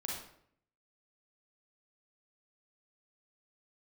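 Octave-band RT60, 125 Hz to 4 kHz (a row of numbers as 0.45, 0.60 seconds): 0.85, 0.80, 0.70, 0.60, 0.55, 0.45 seconds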